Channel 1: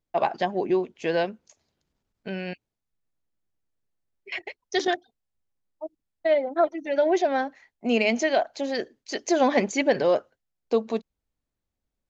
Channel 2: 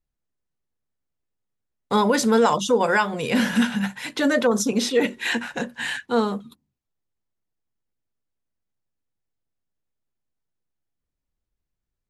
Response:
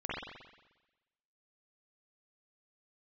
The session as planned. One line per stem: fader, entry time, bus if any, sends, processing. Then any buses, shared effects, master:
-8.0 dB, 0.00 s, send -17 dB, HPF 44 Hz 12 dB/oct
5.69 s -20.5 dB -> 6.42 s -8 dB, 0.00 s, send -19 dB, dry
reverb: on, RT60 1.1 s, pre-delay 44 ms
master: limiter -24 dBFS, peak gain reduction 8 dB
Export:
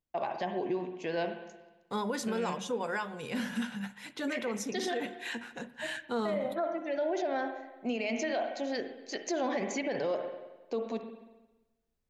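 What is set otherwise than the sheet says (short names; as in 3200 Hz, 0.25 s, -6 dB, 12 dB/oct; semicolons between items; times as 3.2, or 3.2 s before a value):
stem 1: send -17 dB -> -10.5 dB; stem 2 -20.5 dB -> -14.5 dB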